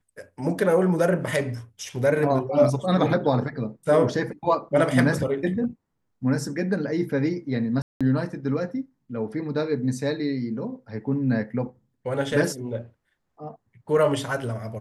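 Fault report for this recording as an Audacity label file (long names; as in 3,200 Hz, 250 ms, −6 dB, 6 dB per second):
7.820000	8.010000	drop-out 186 ms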